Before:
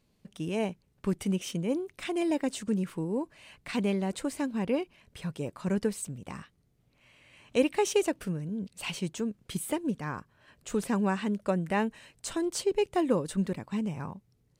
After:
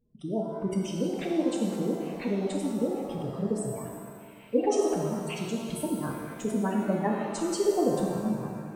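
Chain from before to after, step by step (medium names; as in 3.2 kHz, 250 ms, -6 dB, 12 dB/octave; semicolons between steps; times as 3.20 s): time stretch by phase-locked vocoder 0.6×; spectral gate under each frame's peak -15 dB strong; pitch-shifted reverb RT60 1.8 s, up +7 st, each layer -8 dB, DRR -0.5 dB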